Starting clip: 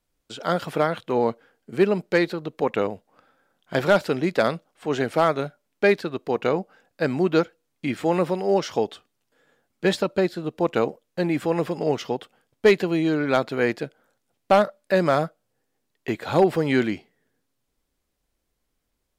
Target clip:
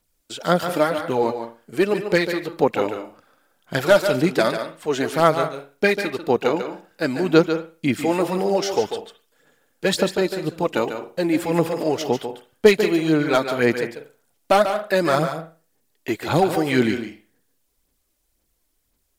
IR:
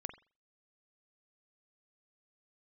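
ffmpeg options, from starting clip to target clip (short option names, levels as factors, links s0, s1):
-filter_complex "[0:a]highshelf=f=5600:g=11.5,aphaser=in_gain=1:out_gain=1:delay=3.4:decay=0.49:speed=1.9:type=sinusoidal,asplit=2[s0][s1];[1:a]atrim=start_sample=2205,lowshelf=f=150:g=-8.5,adelay=144[s2];[s1][s2]afir=irnorm=-1:irlink=0,volume=0.596[s3];[s0][s3]amix=inputs=2:normalize=0"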